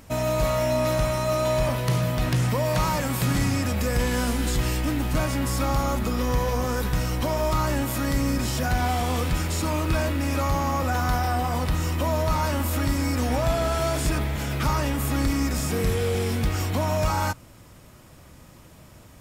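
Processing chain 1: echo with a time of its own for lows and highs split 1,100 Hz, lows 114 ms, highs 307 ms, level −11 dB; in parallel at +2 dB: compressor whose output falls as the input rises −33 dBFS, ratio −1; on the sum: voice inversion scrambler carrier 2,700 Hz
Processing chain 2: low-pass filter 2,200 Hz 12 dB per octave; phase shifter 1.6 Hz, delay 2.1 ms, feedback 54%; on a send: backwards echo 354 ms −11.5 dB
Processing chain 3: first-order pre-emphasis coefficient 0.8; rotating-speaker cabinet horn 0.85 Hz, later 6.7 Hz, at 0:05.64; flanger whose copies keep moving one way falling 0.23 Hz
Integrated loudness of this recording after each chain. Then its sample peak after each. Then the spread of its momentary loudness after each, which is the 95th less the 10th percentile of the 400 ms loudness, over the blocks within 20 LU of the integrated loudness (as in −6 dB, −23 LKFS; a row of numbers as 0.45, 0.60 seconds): −17.5, −22.0, −40.5 LKFS; −8.5, −8.0, −25.0 dBFS; 2, 3, 4 LU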